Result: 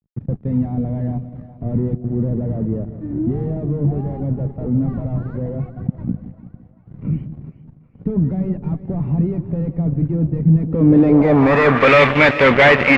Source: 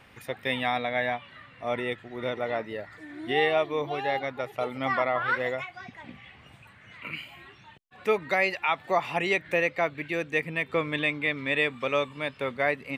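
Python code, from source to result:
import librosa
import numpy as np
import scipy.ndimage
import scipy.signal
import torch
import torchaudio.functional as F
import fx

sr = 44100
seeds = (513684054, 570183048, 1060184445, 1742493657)

y = fx.fuzz(x, sr, gain_db=42.0, gate_db=-45.0)
y = fx.echo_split(y, sr, split_hz=650.0, low_ms=169, high_ms=394, feedback_pct=52, wet_db=-13.5)
y = fx.filter_sweep_lowpass(y, sr, from_hz=170.0, to_hz=2100.0, start_s=10.56, end_s=11.91, q=1.6)
y = y * librosa.db_to_amplitude(4.0)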